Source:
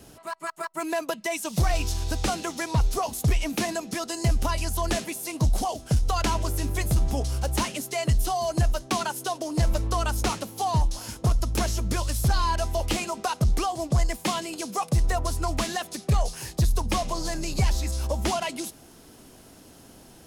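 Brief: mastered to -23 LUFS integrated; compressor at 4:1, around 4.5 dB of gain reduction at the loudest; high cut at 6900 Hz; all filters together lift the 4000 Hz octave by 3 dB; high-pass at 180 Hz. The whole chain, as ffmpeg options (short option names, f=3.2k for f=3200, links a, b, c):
-af "highpass=180,lowpass=6.9k,equalizer=f=4k:t=o:g=4.5,acompressor=threshold=-28dB:ratio=4,volume=9.5dB"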